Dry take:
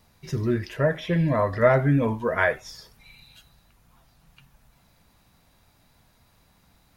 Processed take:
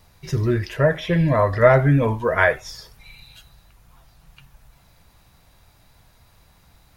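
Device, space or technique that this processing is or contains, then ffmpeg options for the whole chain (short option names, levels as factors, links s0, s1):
low shelf boost with a cut just above: -af "lowshelf=f=100:g=5,equalizer=f=230:t=o:w=0.84:g=-6,volume=1.78"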